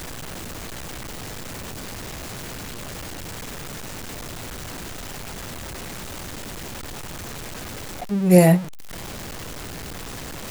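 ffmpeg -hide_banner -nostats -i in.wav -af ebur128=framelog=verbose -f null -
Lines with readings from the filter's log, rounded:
Integrated loudness:
  I:         -27.1 LUFS
  Threshold: -37.1 LUFS
Loudness range:
  LRA:        11.7 LU
  Threshold: -47.2 LUFS
  LRA low:   -34.2 LUFS
  LRA high:  -22.5 LUFS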